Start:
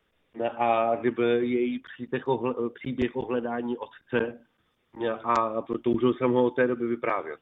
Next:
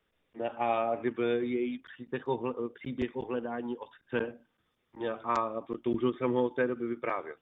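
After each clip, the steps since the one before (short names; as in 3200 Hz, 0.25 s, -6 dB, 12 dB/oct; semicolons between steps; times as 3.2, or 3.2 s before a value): ending taper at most 400 dB/s; gain -5.5 dB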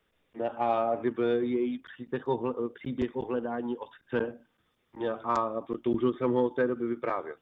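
in parallel at -7 dB: soft clip -24 dBFS, distortion -15 dB; on the sum: dynamic EQ 2400 Hz, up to -8 dB, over -51 dBFS, Q 1.7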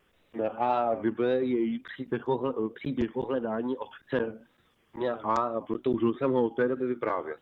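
in parallel at +3 dB: compressor, threshold -38 dBFS, peak gain reduction 16 dB; on the sum: wow and flutter 130 cents; gain -1.5 dB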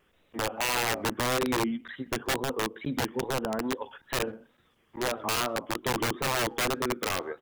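speakerphone echo 0.13 s, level -21 dB; wrapped overs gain 21.5 dB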